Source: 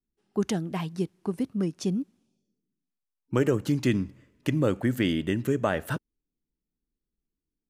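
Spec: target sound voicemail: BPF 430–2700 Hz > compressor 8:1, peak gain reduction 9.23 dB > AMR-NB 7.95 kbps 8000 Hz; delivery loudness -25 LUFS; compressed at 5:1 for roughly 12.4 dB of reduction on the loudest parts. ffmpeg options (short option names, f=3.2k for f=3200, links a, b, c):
-af "acompressor=threshold=-34dB:ratio=5,highpass=430,lowpass=2.7k,acompressor=threshold=-42dB:ratio=8,volume=25.5dB" -ar 8000 -c:a libopencore_amrnb -b:a 7950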